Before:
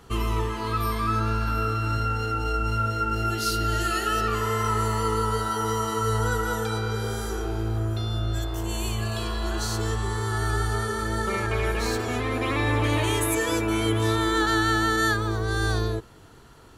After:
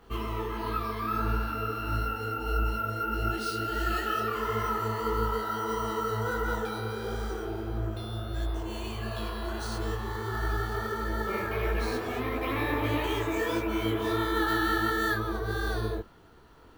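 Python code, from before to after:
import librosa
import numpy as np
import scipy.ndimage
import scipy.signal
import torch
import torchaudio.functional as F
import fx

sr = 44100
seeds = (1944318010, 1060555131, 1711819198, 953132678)

y = fx.peak_eq(x, sr, hz=120.0, db=-8.0, octaves=0.46)
y = np.repeat(scipy.signal.resample_poly(y, 1, 3), 3)[:len(y)]
y = fx.peak_eq(y, sr, hz=10000.0, db=-7.0, octaves=2.1)
y = fx.detune_double(y, sr, cents=53)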